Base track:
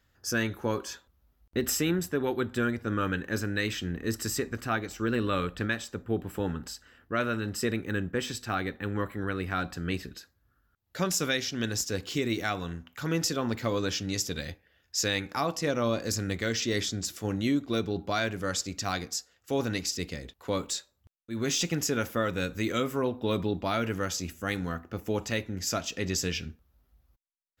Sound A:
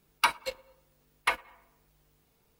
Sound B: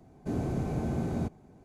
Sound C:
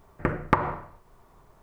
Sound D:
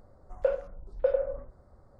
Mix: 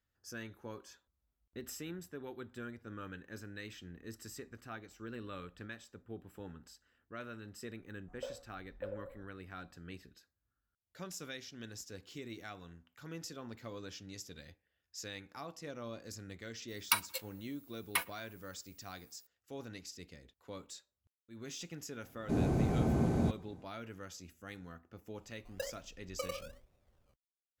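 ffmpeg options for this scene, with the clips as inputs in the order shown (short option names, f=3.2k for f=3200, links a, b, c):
-filter_complex "[4:a]asplit=2[a][b];[0:a]volume=-17dB[c];[a]flanger=delay=17.5:depth=6.2:speed=1.7[d];[1:a]aemphasis=mode=production:type=riaa[e];[2:a]dynaudnorm=f=120:g=3:m=9dB[f];[b]acrusher=samples=20:mix=1:aa=0.000001:lfo=1:lforange=12:lforate=1.1[g];[d]atrim=end=1.99,asetpts=PTS-STARTPTS,volume=-14dB,afade=t=in:d=0.004:c=hsin,afade=t=out:st=1.986:d=0.004:c=hsin,adelay=343098S[h];[e]atrim=end=2.59,asetpts=PTS-STARTPTS,volume=-10dB,afade=t=in:d=0.004:c=hsin,afade=t=out:st=2.586:d=0.004:c=hsin,adelay=735588S[i];[f]atrim=end=1.64,asetpts=PTS-STARTPTS,volume=-8.5dB,afade=t=in:d=0.004:c=hsin,afade=t=out:st=1.636:d=0.004:c=hsin,adelay=22030[j];[g]atrim=end=1.99,asetpts=PTS-STARTPTS,volume=-15dB,afade=t=in:d=0.004:c=hsin,afade=t=out:st=1.986:d=0.004:c=hsin,adelay=25150[k];[c][h][i][j][k]amix=inputs=5:normalize=0"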